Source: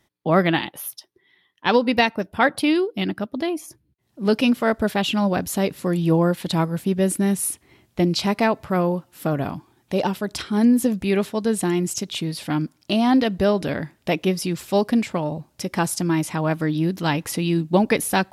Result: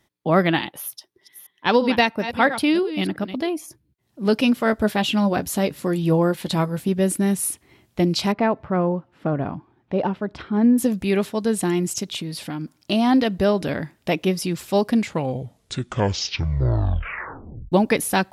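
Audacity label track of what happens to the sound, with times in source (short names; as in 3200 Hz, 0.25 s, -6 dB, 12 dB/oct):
0.790000	3.480000	reverse delay 0.339 s, level -11.5 dB
4.640000	6.890000	doubler 14 ms -11 dB
8.320000	10.780000	Bessel low-pass 1600 Hz
12.160000	12.760000	compressor, threshold -25 dBFS
14.910000	14.910000	tape stop 2.81 s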